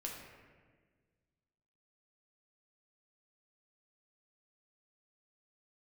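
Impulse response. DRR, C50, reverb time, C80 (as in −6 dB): −2.0 dB, 2.5 dB, 1.5 s, 4.5 dB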